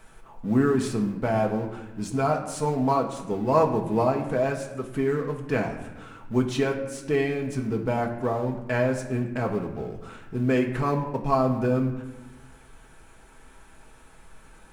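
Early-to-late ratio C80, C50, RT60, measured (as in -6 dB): 10.5 dB, 8.5 dB, 1.1 s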